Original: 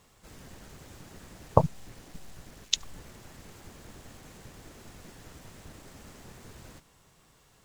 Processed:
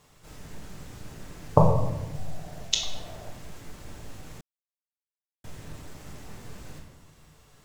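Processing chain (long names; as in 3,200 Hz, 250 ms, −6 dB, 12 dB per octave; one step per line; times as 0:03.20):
0:02.15–0:03.28: parametric band 680 Hz +14.5 dB 0.53 octaves
convolution reverb RT60 1.1 s, pre-delay 7 ms, DRR −1 dB
0:04.41–0:05.44: silence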